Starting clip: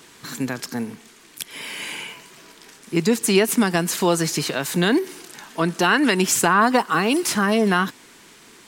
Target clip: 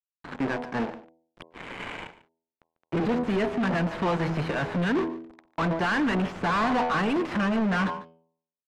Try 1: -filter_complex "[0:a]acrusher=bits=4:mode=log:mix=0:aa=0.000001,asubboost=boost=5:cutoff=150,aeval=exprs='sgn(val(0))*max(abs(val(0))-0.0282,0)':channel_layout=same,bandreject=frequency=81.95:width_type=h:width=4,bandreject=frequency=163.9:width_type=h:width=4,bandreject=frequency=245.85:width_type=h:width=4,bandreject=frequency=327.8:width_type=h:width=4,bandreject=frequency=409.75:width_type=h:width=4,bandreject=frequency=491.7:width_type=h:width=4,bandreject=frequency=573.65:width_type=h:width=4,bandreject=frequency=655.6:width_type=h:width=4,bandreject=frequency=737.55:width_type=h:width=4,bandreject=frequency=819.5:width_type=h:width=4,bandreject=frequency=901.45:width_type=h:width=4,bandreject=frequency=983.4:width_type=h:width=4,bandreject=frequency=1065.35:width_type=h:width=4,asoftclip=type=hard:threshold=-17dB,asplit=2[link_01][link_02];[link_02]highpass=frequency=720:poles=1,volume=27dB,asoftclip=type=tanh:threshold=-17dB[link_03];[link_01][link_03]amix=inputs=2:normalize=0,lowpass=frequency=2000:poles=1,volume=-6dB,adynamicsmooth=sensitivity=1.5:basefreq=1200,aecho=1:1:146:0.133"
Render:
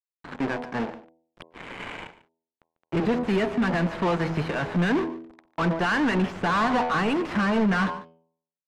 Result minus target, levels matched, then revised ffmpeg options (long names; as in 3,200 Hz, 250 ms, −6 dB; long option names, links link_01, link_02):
hard clipping: distortion −5 dB
-filter_complex "[0:a]acrusher=bits=4:mode=log:mix=0:aa=0.000001,asubboost=boost=5:cutoff=150,aeval=exprs='sgn(val(0))*max(abs(val(0))-0.0282,0)':channel_layout=same,bandreject=frequency=81.95:width_type=h:width=4,bandreject=frequency=163.9:width_type=h:width=4,bandreject=frequency=245.85:width_type=h:width=4,bandreject=frequency=327.8:width_type=h:width=4,bandreject=frequency=409.75:width_type=h:width=4,bandreject=frequency=491.7:width_type=h:width=4,bandreject=frequency=573.65:width_type=h:width=4,bandreject=frequency=655.6:width_type=h:width=4,bandreject=frequency=737.55:width_type=h:width=4,bandreject=frequency=819.5:width_type=h:width=4,bandreject=frequency=901.45:width_type=h:width=4,bandreject=frequency=983.4:width_type=h:width=4,bandreject=frequency=1065.35:width_type=h:width=4,asoftclip=type=hard:threshold=-24dB,asplit=2[link_01][link_02];[link_02]highpass=frequency=720:poles=1,volume=27dB,asoftclip=type=tanh:threshold=-17dB[link_03];[link_01][link_03]amix=inputs=2:normalize=0,lowpass=frequency=2000:poles=1,volume=-6dB,adynamicsmooth=sensitivity=1.5:basefreq=1200,aecho=1:1:146:0.133"